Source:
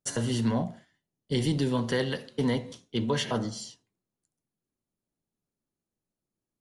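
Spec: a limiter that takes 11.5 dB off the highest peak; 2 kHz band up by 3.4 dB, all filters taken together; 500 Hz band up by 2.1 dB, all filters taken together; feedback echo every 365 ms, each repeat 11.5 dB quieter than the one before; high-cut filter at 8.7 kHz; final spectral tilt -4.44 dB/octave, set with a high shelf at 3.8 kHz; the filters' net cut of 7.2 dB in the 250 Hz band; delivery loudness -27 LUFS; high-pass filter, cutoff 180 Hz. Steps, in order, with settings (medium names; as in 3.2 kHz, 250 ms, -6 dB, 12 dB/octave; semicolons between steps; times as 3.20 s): high-pass 180 Hz; low-pass 8.7 kHz; peaking EQ 250 Hz -8.5 dB; peaking EQ 500 Hz +5 dB; peaking EQ 2 kHz +5 dB; treble shelf 3.8 kHz -5 dB; peak limiter -26.5 dBFS; feedback delay 365 ms, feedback 27%, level -11.5 dB; trim +10 dB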